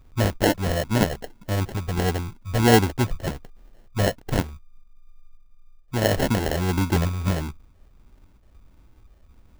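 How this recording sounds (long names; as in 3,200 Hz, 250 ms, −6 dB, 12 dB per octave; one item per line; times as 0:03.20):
phaser sweep stages 8, 1.5 Hz, lowest notch 290–2,600 Hz
aliases and images of a low sample rate 1,200 Hz, jitter 0%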